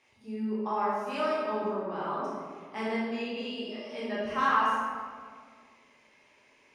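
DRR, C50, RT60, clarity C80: −8.0 dB, −2.0 dB, 1.9 s, 0.5 dB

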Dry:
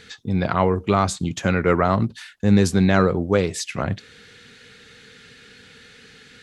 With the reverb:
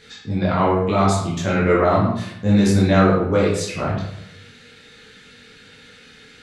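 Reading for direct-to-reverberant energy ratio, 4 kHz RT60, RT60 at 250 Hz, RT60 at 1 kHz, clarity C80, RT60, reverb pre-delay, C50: −6.0 dB, 0.50 s, 0.95 s, 0.80 s, 6.0 dB, 0.80 s, 12 ms, 2.5 dB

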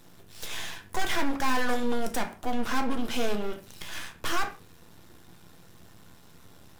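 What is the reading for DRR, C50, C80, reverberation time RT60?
6.0 dB, 13.0 dB, 17.5 dB, non-exponential decay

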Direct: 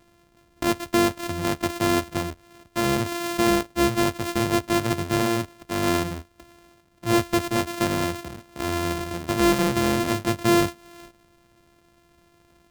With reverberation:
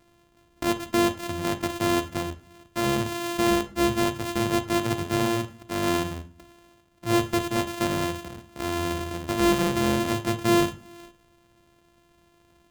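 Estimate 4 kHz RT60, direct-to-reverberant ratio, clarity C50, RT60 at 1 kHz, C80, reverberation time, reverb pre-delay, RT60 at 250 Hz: 0.35 s, 11.5 dB, 13.5 dB, 0.45 s, 19.0 dB, 0.45 s, 37 ms, 0.70 s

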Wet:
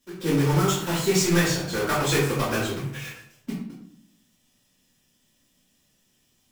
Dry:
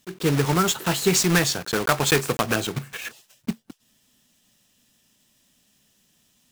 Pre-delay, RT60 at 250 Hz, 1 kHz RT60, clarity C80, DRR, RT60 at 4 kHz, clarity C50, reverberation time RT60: 3 ms, 1.0 s, 0.60 s, 6.5 dB, −9.5 dB, 0.45 s, 3.0 dB, 0.70 s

